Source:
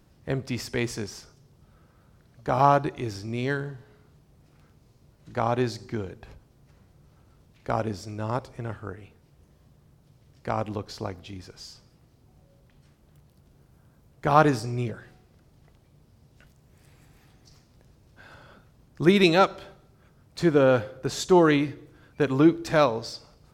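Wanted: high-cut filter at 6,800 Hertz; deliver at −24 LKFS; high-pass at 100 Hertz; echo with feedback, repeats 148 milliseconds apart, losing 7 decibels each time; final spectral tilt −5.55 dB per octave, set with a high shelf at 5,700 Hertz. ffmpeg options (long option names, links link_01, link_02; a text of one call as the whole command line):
ffmpeg -i in.wav -af "highpass=100,lowpass=6800,highshelf=frequency=5700:gain=-8.5,aecho=1:1:148|296|444|592|740:0.447|0.201|0.0905|0.0407|0.0183,volume=0.5dB" out.wav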